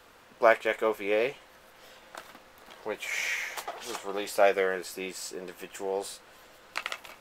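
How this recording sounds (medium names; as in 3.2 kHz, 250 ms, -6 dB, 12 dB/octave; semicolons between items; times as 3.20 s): noise floor -56 dBFS; spectral tilt -2.0 dB/octave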